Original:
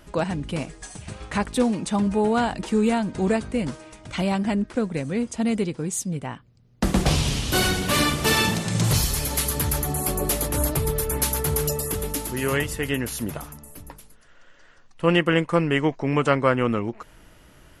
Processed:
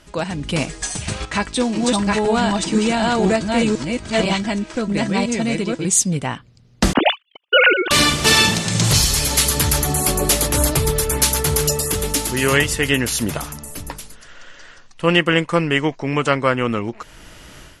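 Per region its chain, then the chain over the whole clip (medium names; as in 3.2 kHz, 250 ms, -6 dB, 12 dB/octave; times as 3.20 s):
1.25–5.85 s: chunks repeated in reverse 501 ms, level 0 dB + low-pass 9 kHz 24 dB/octave + feedback comb 330 Hz, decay 0.15 s, mix 70%
6.93–7.91 s: formants replaced by sine waves + gate -25 dBFS, range -55 dB
whole clip: low-pass 8.2 kHz 12 dB/octave; treble shelf 2.3 kHz +9 dB; level rider; trim -1 dB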